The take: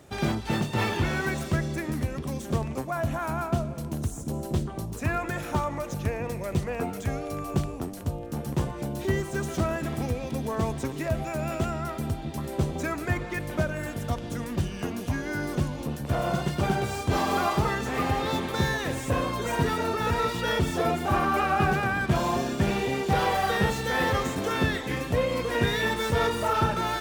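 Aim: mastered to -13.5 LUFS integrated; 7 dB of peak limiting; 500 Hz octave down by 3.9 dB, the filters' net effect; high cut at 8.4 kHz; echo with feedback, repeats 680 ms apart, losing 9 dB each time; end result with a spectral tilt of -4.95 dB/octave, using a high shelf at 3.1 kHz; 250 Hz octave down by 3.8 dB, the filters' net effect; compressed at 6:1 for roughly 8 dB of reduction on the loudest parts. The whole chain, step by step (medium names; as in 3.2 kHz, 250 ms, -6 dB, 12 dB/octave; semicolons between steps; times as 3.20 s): low-pass 8.4 kHz; peaking EQ 250 Hz -4.5 dB; peaking EQ 500 Hz -3.5 dB; treble shelf 3.1 kHz -5.5 dB; compression 6:1, threshold -30 dBFS; peak limiter -26.5 dBFS; feedback delay 680 ms, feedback 35%, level -9 dB; trim +22.5 dB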